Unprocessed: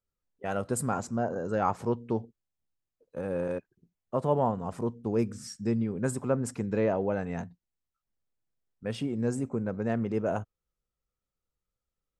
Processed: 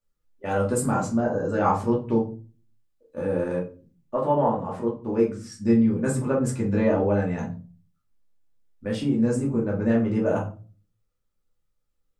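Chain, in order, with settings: 4.14–5.52 s: tone controls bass -8 dB, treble -9 dB; simulated room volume 190 m³, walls furnished, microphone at 2.5 m

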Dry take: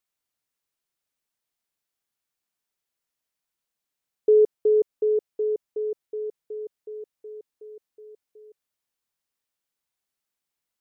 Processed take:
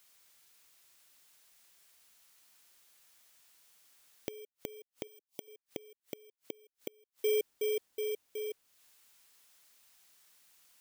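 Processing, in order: bit-reversed sample order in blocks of 16 samples; in parallel at +0.5 dB: peak limiter -22.5 dBFS, peak gain reduction 10.5 dB; 5.07–5.48 s: on the sum: static phaser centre 310 Hz, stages 8; inverted gate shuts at -29 dBFS, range -40 dB; tape noise reduction on one side only encoder only; trim +4.5 dB

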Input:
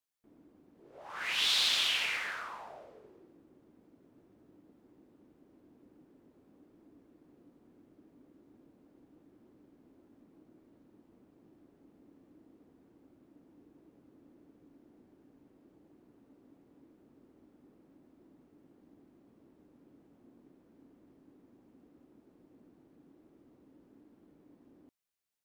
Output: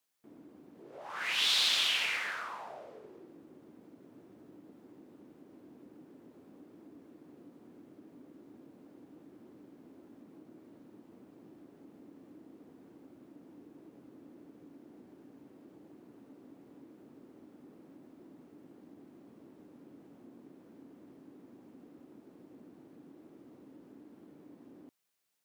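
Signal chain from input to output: high-pass 120 Hz 12 dB/octave; in parallel at +3 dB: compression, threshold -58 dBFS, peak gain reduction 29 dB

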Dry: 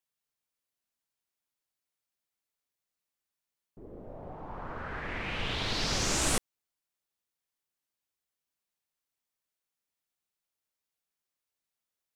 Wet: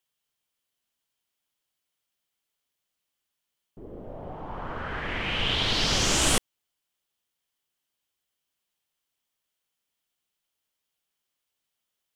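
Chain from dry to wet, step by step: peaking EQ 3.1 kHz +8 dB 0.29 oct; trim +5 dB

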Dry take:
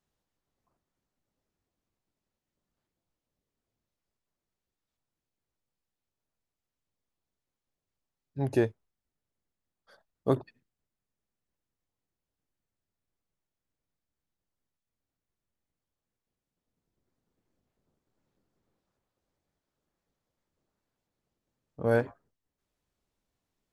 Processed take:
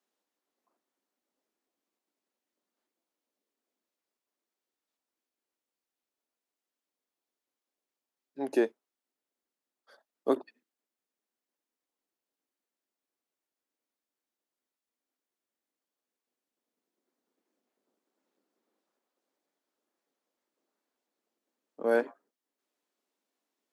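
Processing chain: steep high-pass 240 Hz 36 dB/octave

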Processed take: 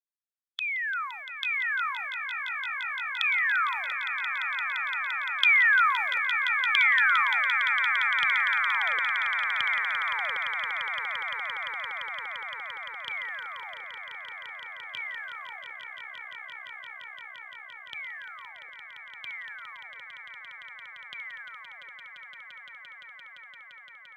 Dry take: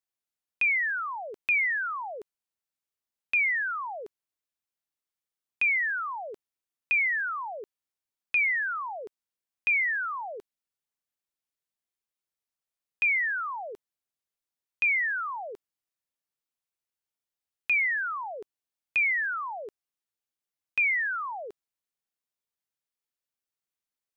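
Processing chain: Doppler pass-by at 5.52 s, 13 m/s, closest 14 m; formant shift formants +5 st; in parallel at +1.5 dB: compression, threshold -40 dBFS, peak gain reduction 17 dB; on the sum: high-pass sweep 1.3 kHz -> 110 Hz, 7.50–8.18 s; gate -50 dBFS, range -7 dB; on a send: echo with a slow build-up 172 ms, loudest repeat 8, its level -10 dB

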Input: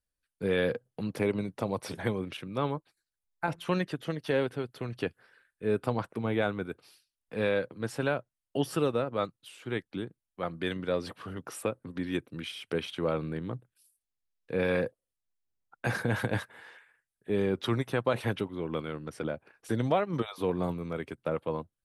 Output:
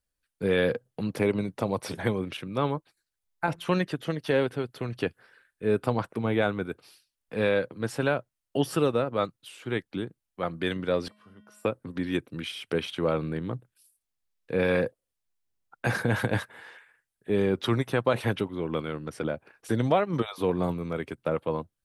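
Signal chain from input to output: 11.08–11.65 s: feedback comb 210 Hz, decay 0.77 s, harmonics odd, mix 90%; trim +3.5 dB

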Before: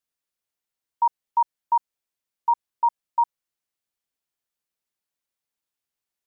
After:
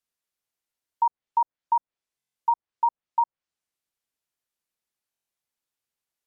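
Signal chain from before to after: low-pass that closes with the level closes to 1 kHz, closed at -19 dBFS; buffer glitch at 2.17/5.10 s, samples 1024, times 7

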